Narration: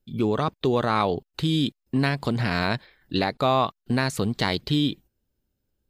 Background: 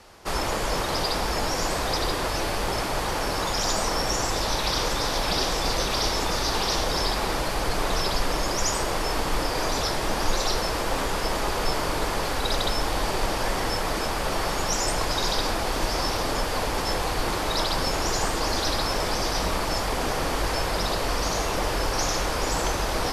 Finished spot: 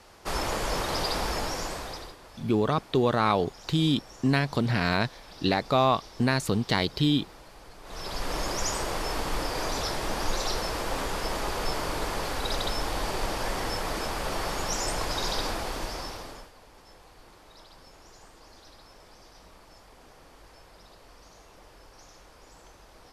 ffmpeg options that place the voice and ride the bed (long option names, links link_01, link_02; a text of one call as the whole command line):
ffmpeg -i stem1.wav -i stem2.wav -filter_complex "[0:a]adelay=2300,volume=-1dB[link_01];[1:a]volume=15.5dB,afade=type=out:start_time=1.26:duration=0.9:silence=0.1,afade=type=in:start_time=7.83:duration=0.56:silence=0.11885,afade=type=out:start_time=15.44:duration=1.08:silence=0.0749894[link_02];[link_01][link_02]amix=inputs=2:normalize=0" out.wav